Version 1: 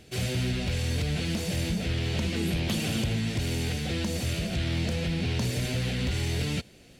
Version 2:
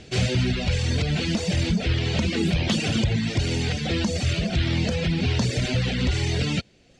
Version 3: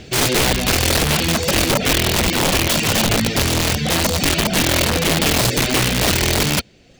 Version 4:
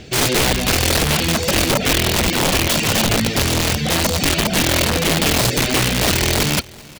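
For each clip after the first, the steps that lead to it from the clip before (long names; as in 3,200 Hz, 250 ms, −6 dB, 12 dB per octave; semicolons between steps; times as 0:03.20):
low-pass filter 7,200 Hz 24 dB per octave; reverb reduction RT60 1.1 s; level +8 dB
running median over 3 samples; wrap-around overflow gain 18.5 dB; level +7 dB
repeating echo 383 ms, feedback 51%, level −23 dB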